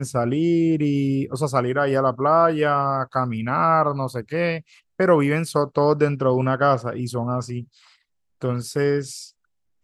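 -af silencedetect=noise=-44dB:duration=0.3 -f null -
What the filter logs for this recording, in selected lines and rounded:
silence_start: 7.93
silence_end: 8.42 | silence_duration: 0.49
silence_start: 9.30
silence_end: 9.84 | silence_duration: 0.54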